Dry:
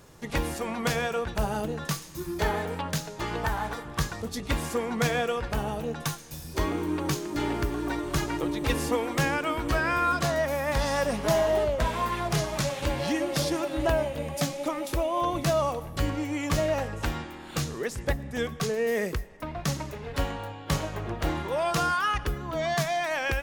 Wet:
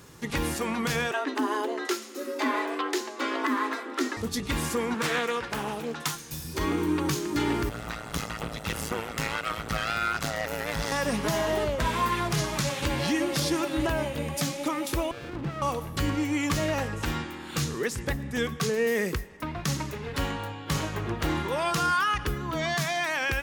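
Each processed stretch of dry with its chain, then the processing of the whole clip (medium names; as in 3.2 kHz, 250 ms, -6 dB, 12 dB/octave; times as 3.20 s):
1.11–4.17 s: frequency shift +210 Hz + treble shelf 7.9 kHz -10.5 dB
4.94–6.14 s: high-pass 360 Hz 6 dB/octave + loudspeaker Doppler distortion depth 0.47 ms
7.69–10.92 s: comb filter that takes the minimum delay 1.5 ms + AM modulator 110 Hz, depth 90%
15.11–15.62 s: compression 2.5:1, threshold -30 dBFS + distance through air 430 m + sliding maximum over 33 samples
whole clip: high-pass 85 Hz 6 dB/octave; peaking EQ 640 Hz -8 dB 0.72 oct; peak limiter -21.5 dBFS; trim +4.5 dB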